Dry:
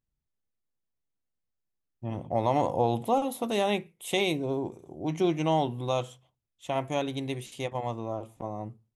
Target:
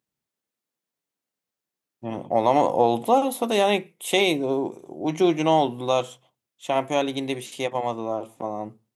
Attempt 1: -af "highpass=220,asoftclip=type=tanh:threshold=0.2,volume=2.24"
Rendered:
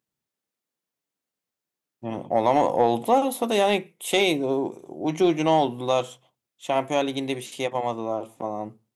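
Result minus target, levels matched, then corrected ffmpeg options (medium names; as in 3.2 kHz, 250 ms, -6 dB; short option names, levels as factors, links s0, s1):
saturation: distortion +19 dB
-af "highpass=220,asoftclip=type=tanh:threshold=0.668,volume=2.24"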